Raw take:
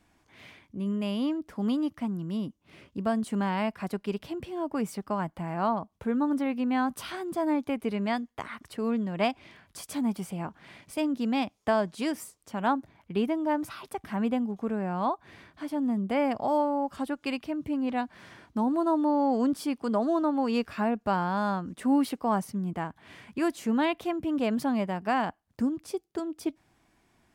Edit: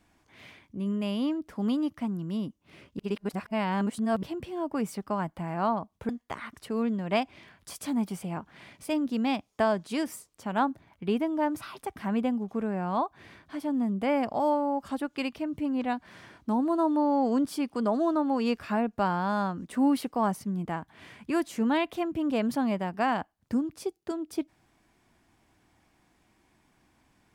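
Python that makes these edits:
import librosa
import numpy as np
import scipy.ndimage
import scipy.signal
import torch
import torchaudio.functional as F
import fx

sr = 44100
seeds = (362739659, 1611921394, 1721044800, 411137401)

y = fx.edit(x, sr, fx.reverse_span(start_s=2.99, length_s=1.24),
    fx.cut(start_s=6.09, length_s=2.08), tone=tone)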